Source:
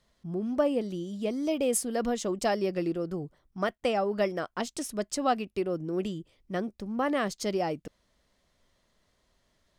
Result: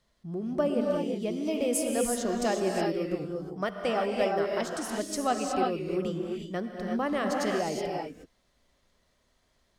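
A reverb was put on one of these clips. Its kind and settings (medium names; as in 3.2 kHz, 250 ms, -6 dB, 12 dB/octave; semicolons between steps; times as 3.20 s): gated-style reverb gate 390 ms rising, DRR 0 dB; trim -2 dB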